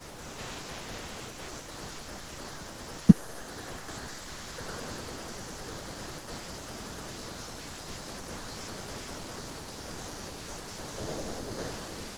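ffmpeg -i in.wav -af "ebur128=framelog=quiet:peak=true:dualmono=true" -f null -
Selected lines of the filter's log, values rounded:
Integrated loudness:
  I:         -32.5 LUFS
  Threshold: -42.5 LUFS
Loudness range:
  LRA:         9.6 LU
  Threshold: -51.8 LUFS
  LRA low:   -37.5 LUFS
  LRA high:  -27.9 LUFS
True peak:
  Peak:       -2.8 dBFS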